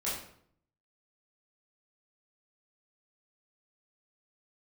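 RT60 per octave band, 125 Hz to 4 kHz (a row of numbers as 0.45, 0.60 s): 0.90, 0.75, 0.65, 0.60, 0.55, 0.45 s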